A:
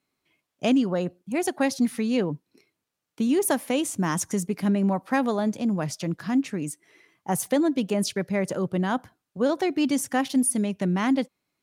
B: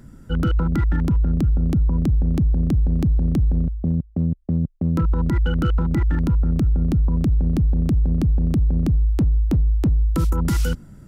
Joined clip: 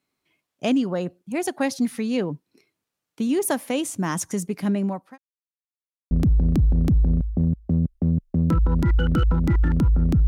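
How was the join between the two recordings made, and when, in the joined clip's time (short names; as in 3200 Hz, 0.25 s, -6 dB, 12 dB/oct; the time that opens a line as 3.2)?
A
4.78–5.18 fade out linear
5.18–6.11 mute
6.11 switch to B from 2.58 s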